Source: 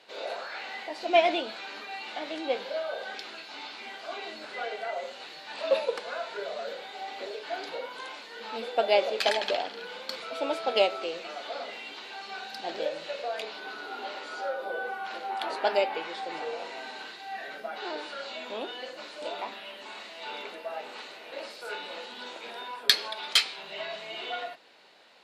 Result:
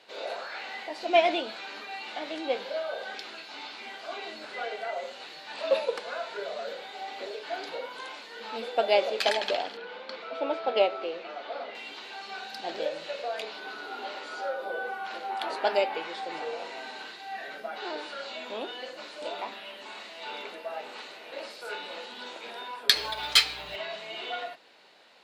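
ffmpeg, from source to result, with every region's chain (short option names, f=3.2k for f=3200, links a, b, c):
-filter_complex "[0:a]asettb=1/sr,asplit=3[a][b][c];[a]atrim=end=9.774[d];[b]atrim=start=9.77:end=11.75,asetpts=PTS-STARTPTS,afade=t=in:d=0.004:c=qsin,afade=t=out:st=1.976:d=0.004:c=qsin,highpass=210,lowpass=5.7k,aemphasis=mode=reproduction:type=75fm[e];[c]atrim=start=11.746[f];[d][e]acrossfade=d=0.004:c1=hsin:c2=qsin[g];[g][f]acrossfade=d=0.004:c1=qsin:c2=hsin,asettb=1/sr,asplit=3[h][i][j];[h]atrim=end=22.954[k];[i]atrim=start=22.95:end=23.76,asetpts=PTS-STARTPTS,afade=t=in:d=0.004:c=qsin,afade=t=out:st=0.806:d=0.004:c=qsin,aecho=1:1:6.7:0.89,atrim=end_sample=35721,aeval=exprs='val(0)+0.00224*(sin(2*PI*60*n/s)+sin(2*PI*2*60*n/s)/2+sin(2*PI*3*60*n/s)/3+sin(2*PI*4*60*n/s)/4+sin(2*PI*5*60*n/s)/5)':c=same,acrusher=bits=6:mode=log:mix=0:aa=0.000001[l];[j]atrim=start=23.756[m];[k][l]acrossfade=d=0.004:c1=hsin:c2=qsin[n];[n][m]acrossfade=d=0.004:c1=qsin:c2=hsin"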